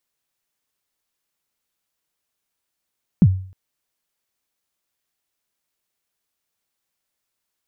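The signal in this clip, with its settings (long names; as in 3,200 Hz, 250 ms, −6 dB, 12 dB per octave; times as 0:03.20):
synth kick length 0.31 s, from 220 Hz, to 94 Hz, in 51 ms, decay 0.48 s, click off, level −5 dB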